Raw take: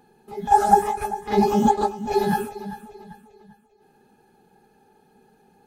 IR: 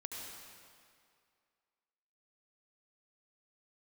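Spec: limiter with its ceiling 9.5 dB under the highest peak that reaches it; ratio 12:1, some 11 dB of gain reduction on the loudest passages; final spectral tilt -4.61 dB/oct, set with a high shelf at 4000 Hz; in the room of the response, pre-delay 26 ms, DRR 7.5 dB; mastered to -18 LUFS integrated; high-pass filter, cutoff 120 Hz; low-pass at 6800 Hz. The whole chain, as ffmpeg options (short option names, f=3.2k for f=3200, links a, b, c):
-filter_complex "[0:a]highpass=120,lowpass=6.8k,highshelf=f=4k:g=5.5,acompressor=threshold=-20dB:ratio=12,alimiter=limit=-21.5dB:level=0:latency=1,asplit=2[a][b];[1:a]atrim=start_sample=2205,adelay=26[c];[b][c]afir=irnorm=-1:irlink=0,volume=-6.5dB[d];[a][d]amix=inputs=2:normalize=0,volume=13dB"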